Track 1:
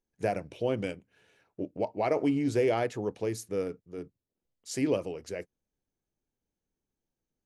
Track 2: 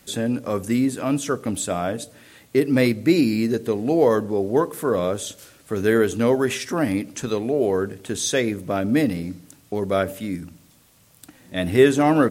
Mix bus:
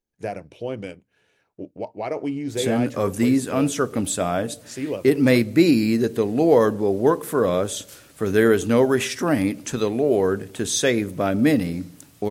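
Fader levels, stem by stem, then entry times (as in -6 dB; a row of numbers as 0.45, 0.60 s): 0.0, +1.5 dB; 0.00, 2.50 s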